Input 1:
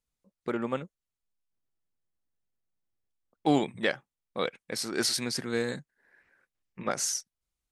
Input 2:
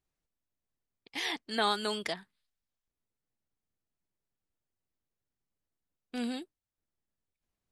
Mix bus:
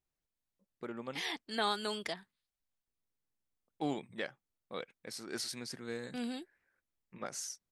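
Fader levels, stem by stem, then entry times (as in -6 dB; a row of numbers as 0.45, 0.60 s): -11.5, -4.0 dB; 0.35, 0.00 s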